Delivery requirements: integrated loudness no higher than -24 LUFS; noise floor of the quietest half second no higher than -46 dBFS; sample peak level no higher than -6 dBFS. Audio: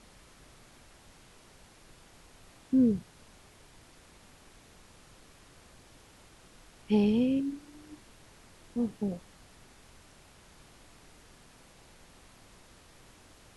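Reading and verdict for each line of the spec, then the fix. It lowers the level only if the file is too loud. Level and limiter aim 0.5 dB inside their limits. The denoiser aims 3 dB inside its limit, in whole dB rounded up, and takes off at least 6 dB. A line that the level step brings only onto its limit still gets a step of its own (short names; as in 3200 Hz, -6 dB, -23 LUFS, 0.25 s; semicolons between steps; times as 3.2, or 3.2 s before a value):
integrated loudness -29.5 LUFS: OK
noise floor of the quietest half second -57 dBFS: OK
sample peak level -14.0 dBFS: OK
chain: none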